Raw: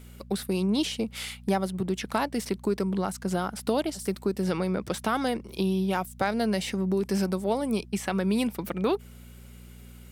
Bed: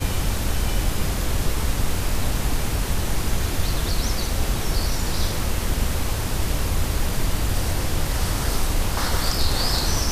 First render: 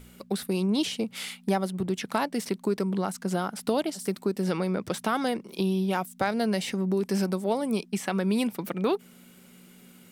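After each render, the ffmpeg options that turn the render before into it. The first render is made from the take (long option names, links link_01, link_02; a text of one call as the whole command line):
ffmpeg -i in.wav -af "bandreject=frequency=60:width_type=h:width=4,bandreject=frequency=120:width_type=h:width=4" out.wav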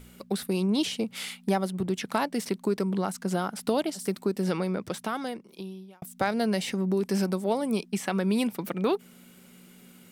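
ffmpeg -i in.wav -filter_complex "[0:a]asplit=2[link_01][link_02];[link_01]atrim=end=6.02,asetpts=PTS-STARTPTS,afade=type=out:start_time=4.49:duration=1.53[link_03];[link_02]atrim=start=6.02,asetpts=PTS-STARTPTS,afade=type=in:duration=0.004:curve=hsin[link_04];[link_03][link_04]concat=n=2:v=0:a=1" out.wav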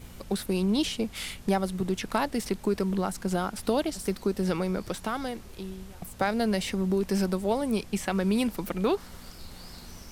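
ffmpeg -i in.wav -i bed.wav -filter_complex "[1:a]volume=-24dB[link_01];[0:a][link_01]amix=inputs=2:normalize=0" out.wav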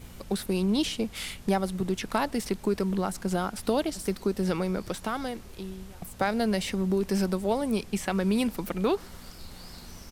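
ffmpeg -i in.wav -filter_complex "[0:a]asplit=2[link_01][link_02];[link_02]adelay=122.4,volume=-30dB,highshelf=frequency=4000:gain=-2.76[link_03];[link_01][link_03]amix=inputs=2:normalize=0" out.wav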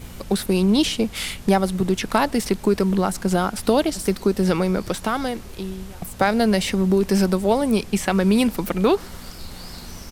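ffmpeg -i in.wav -af "volume=8dB" out.wav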